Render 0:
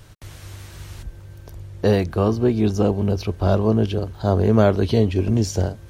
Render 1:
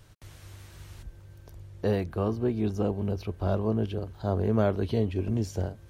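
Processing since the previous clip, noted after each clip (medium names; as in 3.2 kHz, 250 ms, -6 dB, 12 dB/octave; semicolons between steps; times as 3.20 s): dynamic bell 5.6 kHz, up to -6 dB, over -48 dBFS, Q 0.99; trim -9 dB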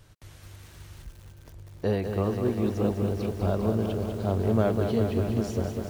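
bit-crushed delay 199 ms, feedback 80%, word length 8-bit, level -6.5 dB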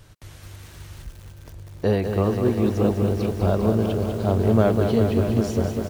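delay 615 ms -17 dB; trim +5.5 dB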